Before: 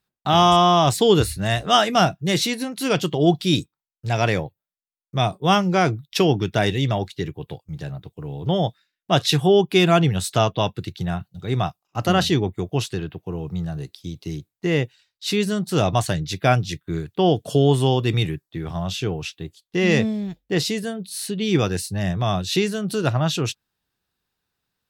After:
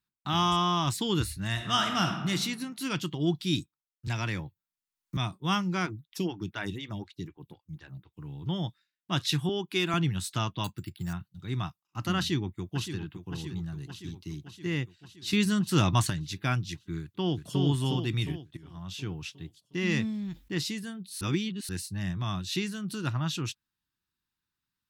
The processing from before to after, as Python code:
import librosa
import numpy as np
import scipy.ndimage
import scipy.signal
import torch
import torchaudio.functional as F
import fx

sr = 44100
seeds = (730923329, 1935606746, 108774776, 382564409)

y = fx.reverb_throw(x, sr, start_s=1.51, length_s=0.78, rt60_s=1.1, drr_db=3.5)
y = fx.band_squash(y, sr, depth_pct=70, at=(4.07, 5.17))
y = fx.stagger_phaser(y, sr, hz=4.0, at=(5.85, 8.13), fade=0.02)
y = fx.highpass(y, sr, hz=240.0, slope=12, at=(9.49, 9.94))
y = fx.resample_bad(y, sr, factor=6, down='filtered', up='hold', at=(10.64, 11.13))
y = fx.echo_throw(y, sr, start_s=12.18, length_s=0.79, ms=570, feedback_pct=65, wet_db=-9.5)
y = fx.echo_throw(y, sr, start_s=17.01, length_s=0.59, ms=360, feedback_pct=50, wet_db=-3.0)
y = fx.env_flatten(y, sr, amount_pct=50, at=(20.09, 20.52))
y = fx.edit(y, sr, fx.clip_gain(start_s=15.33, length_s=0.77, db=6.5),
    fx.fade_in_from(start_s=18.57, length_s=0.55, floor_db=-17.5),
    fx.reverse_span(start_s=21.21, length_s=0.48), tone=tone)
y = fx.band_shelf(y, sr, hz=560.0, db=-12.0, octaves=1.1)
y = y * 10.0 ** (-8.5 / 20.0)